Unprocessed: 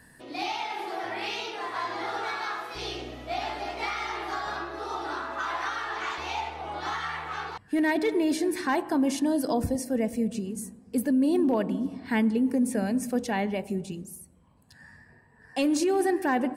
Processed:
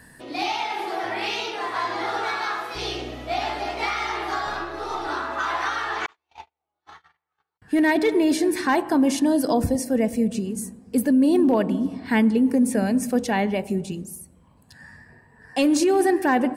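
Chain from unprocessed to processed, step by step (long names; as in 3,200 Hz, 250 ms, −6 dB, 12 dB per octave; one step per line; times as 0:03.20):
0:04.47–0:05.08: gain on one half-wave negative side −3 dB
0:06.06–0:07.62: noise gate −27 dBFS, range −55 dB
level +5.5 dB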